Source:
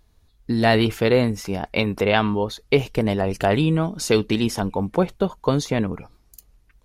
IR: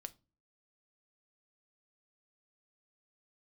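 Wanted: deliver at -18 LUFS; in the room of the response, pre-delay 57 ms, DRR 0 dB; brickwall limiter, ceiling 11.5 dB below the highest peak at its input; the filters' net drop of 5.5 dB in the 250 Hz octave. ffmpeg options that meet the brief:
-filter_complex "[0:a]equalizer=f=250:t=o:g=-7.5,alimiter=limit=-16.5dB:level=0:latency=1,asplit=2[a][b];[1:a]atrim=start_sample=2205,adelay=57[c];[b][c]afir=irnorm=-1:irlink=0,volume=5dB[d];[a][d]amix=inputs=2:normalize=0,volume=7dB"

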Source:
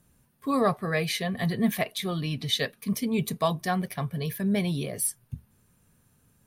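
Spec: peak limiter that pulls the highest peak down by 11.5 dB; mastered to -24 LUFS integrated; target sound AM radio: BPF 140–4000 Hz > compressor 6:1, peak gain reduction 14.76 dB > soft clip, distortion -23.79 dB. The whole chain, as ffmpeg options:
-af "alimiter=limit=-24dB:level=0:latency=1,highpass=140,lowpass=4k,acompressor=threshold=-44dB:ratio=6,asoftclip=threshold=-36dB,volume=23.5dB"

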